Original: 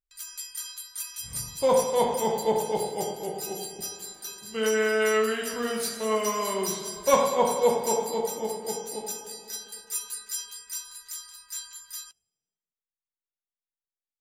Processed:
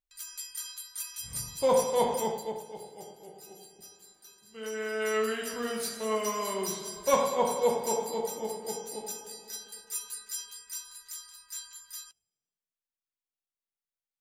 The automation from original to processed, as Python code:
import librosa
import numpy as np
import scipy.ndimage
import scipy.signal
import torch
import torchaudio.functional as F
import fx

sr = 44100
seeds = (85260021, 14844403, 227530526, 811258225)

y = fx.gain(x, sr, db=fx.line((2.19, -2.5), (2.65, -15.5), (4.49, -15.5), (5.24, -4.0)))